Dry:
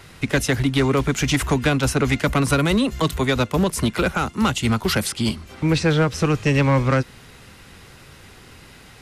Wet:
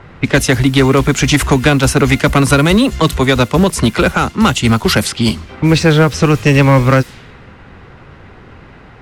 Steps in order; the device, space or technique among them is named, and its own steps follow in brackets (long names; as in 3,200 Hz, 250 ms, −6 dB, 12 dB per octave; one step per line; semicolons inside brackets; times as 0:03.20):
cassette deck with a dynamic noise filter (white noise bed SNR 28 dB; low-pass that shuts in the quiet parts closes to 1,400 Hz, open at −16 dBFS)
level +8.5 dB